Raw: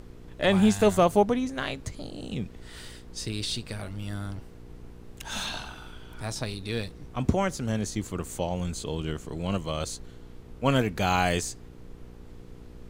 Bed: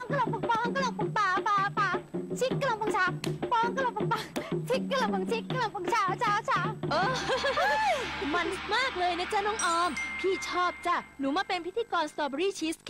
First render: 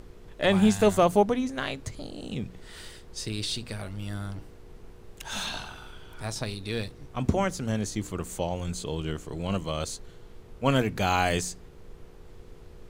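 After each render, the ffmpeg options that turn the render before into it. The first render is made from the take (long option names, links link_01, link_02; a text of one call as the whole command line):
ffmpeg -i in.wav -af "bandreject=frequency=60:width_type=h:width=4,bandreject=frequency=120:width_type=h:width=4,bandreject=frequency=180:width_type=h:width=4,bandreject=frequency=240:width_type=h:width=4,bandreject=frequency=300:width_type=h:width=4" out.wav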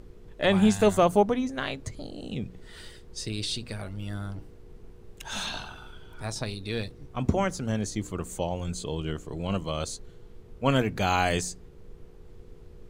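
ffmpeg -i in.wav -af "afftdn=noise_reduction=6:noise_floor=-49" out.wav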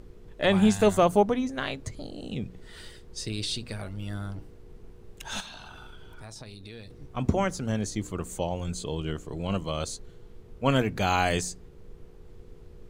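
ffmpeg -i in.wav -filter_complex "[0:a]asettb=1/sr,asplit=3[link_01][link_02][link_03];[link_01]atrim=end=5.404[link_04];[link_02]atrim=start=5.4:end=6.9,asetpts=PTS-STARTPTS,afade=type=in:duration=0.004:curve=qsin,afade=type=out:start_time=1.496:duration=0.004:curve=qsin,acompressor=threshold=-40dB:ratio=6:attack=3.2:release=140:knee=1:detection=peak[link_05];[link_03]atrim=start=6.896[link_06];[link_04][link_05]acrossfade=duration=0.004:curve1=hsin:curve2=qsin[link_07];[link_07][link_06]acrossfade=duration=0.004:curve1=qsin:curve2=hsin" out.wav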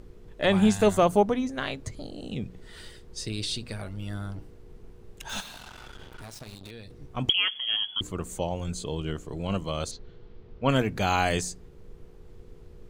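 ffmpeg -i in.wav -filter_complex "[0:a]asettb=1/sr,asplit=3[link_01][link_02][link_03];[link_01]atrim=end=5.294[link_04];[link_02]atrim=start=5.29:end=6.71,asetpts=PTS-STARTPTS,afade=type=in:duration=0.004:curve=qsin,afade=type=out:start_time=1.416:duration=0.004:curve=qsin,acrusher=bits=6:mix=0:aa=0.5[link_05];[link_03]atrim=start=6.706[link_06];[link_04][link_05]acrossfade=duration=0.004:curve1=hsin:curve2=qsin[link_07];[link_07][link_06]acrossfade=duration=0.004:curve1=qsin:curve2=hsin,asettb=1/sr,asplit=3[link_08][link_09][link_10];[link_08]atrim=end=7.294[link_11];[link_09]atrim=start=7.29:end=8.01,asetpts=PTS-STARTPTS,afade=type=in:duration=0.004:curve=qsin,afade=type=out:start_time=0.716:duration=0.004:curve=qsin,lowpass=frequency=2900:width_type=q:width=0.5098,lowpass=frequency=2900:width_type=q:width=0.6013,lowpass=frequency=2900:width_type=q:width=0.9,lowpass=frequency=2900:width_type=q:width=2.563,afreqshift=-3400[link_12];[link_10]atrim=start=8.006[link_13];[link_11][link_12]acrossfade=duration=0.004:curve1=hsin:curve2=qsin[link_14];[link_14][link_13]acrossfade=duration=0.004:curve1=qsin:curve2=hsin,asettb=1/sr,asplit=3[link_15][link_16][link_17];[link_15]atrim=end=9.914[link_18];[link_16]atrim=start=9.91:end=10.69,asetpts=PTS-STARTPTS,afade=type=in:duration=0.004:curve=qsin,afade=type=out:start_time=0.776:duration=0.004:curve=qsin,lowpass=frequency=4800:width=0.5412,lowpass=frequency=4800:width=1.3066[link_19];[link_17]atrim=start=10.686[link_20];[link_18][link_19]acrossfade=duration=0.004:curve1=hsin:curve2=qsin[link_21];[link_21][link_20]acrossfade=duration=0.004:curve1=qsin:curve2=hsin" out.wav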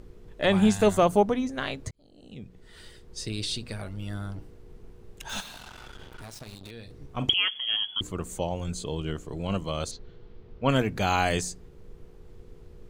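ffmpeg -i in.wav -filter_complex "[0:a]asettb=1/sr,asplit=3[link_01][link_02][link_03];[link_01]atrim=end=6.724[link_04];[link_02]atrim=start=6.72:end=7.34,asetpts=PTS-STARTPTS,afade=type=in:duration=0.004:curve=qsin,afade=type=out:start_time=0.616:duration=0.004:curve=qsin,asplit=2[link_05][link_06];[link_06]adelay=43,volume=-12dB[link_07];[link_05][link_07]amix=inputs=2:normalize=0,atrim=end_sample=27342[link_08];[link_03]atrim=start=7.336[link_09];[link_04][link_08]acrossfade=duration=0.004:curve1=hsin:curve2=qsin[link_10];[link_10][link_09]acrossfade=duration=0.004:curve1=qsin:curve2=hsin,asplit=2[link_11][link_12];[link_11]atrim=end=1.91,asetpts=PTS-STARTPTS,afade=type=out:start_time=1.906:duration=0.004:curve=hsin[link_13];[link_12]atrim=start=1.91,asetpts=PTS-STARTPTS,afade=type=in:duration=1.38[link_14];[link_13][link_14]concat=n=2:v=0:a=1" out.wav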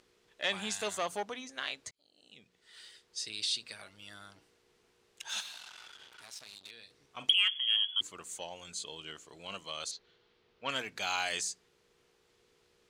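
ffmpeg -i in.wav -af "asoftclip=type=tanh:threshold=-12.5dB,bandpass=frequency=4600:width_type=q:width=0.58:csg=0" out.wav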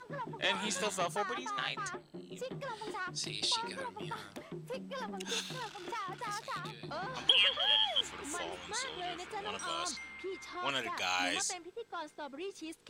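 ffmpeg -i in.wav -i bed.wav -filter_complex "[1:a]volume=-13dB[link_01];[0:a][link_01]amix=inputs=2:normalize=0" out.wav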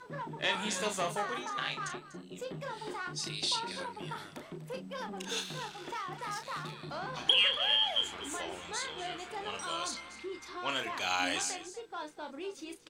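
ffmpeg -i in.wav -filter_complex "[0:a]asplit=2[link_01][link_02];[link_02]adelay=33,volume=-7dB[link_03];[link_01][link_03]amix=inputs=2:normalize=0,aecho=1:1:244:0.178" out.wav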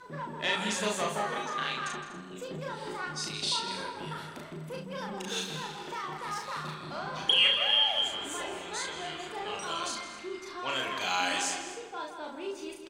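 ffmpeg -i in.wav -filter_complex "[0:a]asplit=2[link_01][link_02];[link_02]adelay=38,volume=-3dB[link_03];[link_01][link_03]amix=inputs=2:normalize=0,asplit=2[link_04][link_05];[link_05]adelay=163,lowpass=frequency=3700:poles=1,volume=-7.5dB,asplit=2[link_06][link_07];[link_07]adelay=163,lowpass=frequency=3700:poles=1,volume=0.48,asplit=2[link_08][link_09];[link_09]adelay=163,lowpass=frequency=3700:poles=1,volume=0.48,asplit=2[link_10][link_11];[link_11]adelay=163,lowpass=frequency=3700:poles=1,volume=0.48,asplit=2[link_12][link_13];[link_13]adelay=163,lowpass=frequency=3700:poles=1,volume=0.48,asplit=2[link_14][link_15];[link_15]adelay=163,lowpass=frequency=3700:poles=1,volume=0.48[link_16];[link_04][link_06][link_08][link_10][link_12][link_14][link_16]amix=inputs=7:normalize=0" out.wav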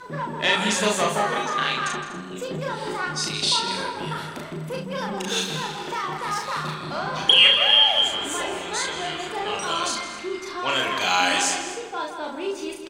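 ffmpeg -i in.wav -af "volume=9dB" out.wav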